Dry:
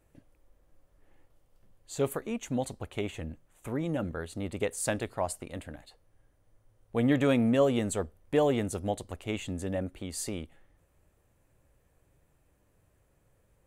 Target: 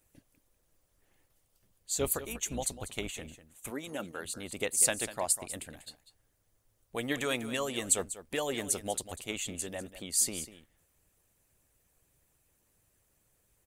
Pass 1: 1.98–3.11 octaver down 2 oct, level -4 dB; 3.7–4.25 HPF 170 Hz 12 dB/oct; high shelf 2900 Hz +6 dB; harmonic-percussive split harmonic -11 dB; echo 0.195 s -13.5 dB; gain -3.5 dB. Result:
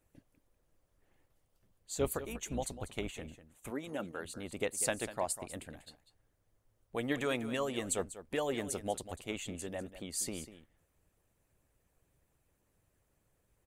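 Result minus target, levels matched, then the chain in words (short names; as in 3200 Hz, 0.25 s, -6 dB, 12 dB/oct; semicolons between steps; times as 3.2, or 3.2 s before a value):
8000 Hz band -4.0 dB
1.98–3.11 octaver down 2 oct, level -4 dB; 3.7–4.25 HPF 170 Hz 12 dB/oct; high shelf 2900 Hz +16.5 dB; harmonic-percussive split harmonic -11 dB; echo 0.195 s -13.5 dB; gain -3.5 dB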